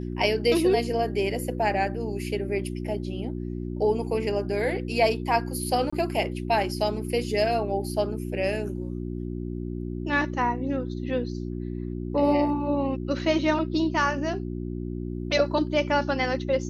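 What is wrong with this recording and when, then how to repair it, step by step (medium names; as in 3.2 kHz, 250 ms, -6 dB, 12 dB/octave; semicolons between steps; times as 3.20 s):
hum 60 Hz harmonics 6 -32 dBFS
5.90–5.92 s: dropout 25 ms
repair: de-hum 60 Hz, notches 6; interpolate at 5.90 s, 25 ms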